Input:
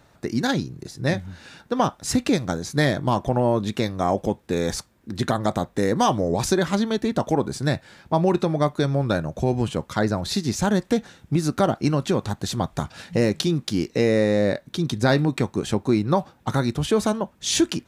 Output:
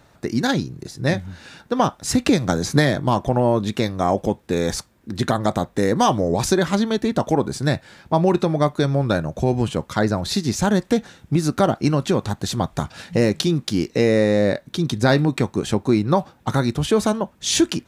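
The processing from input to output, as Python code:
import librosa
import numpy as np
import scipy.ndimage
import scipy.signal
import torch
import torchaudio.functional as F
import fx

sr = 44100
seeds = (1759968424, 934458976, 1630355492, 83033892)

y = fx.band_squash(x, sr, depth_pct=100, at=(2.26, 2.96))
y = F.gain(torch.from_numpy(y), 2.5).numpy()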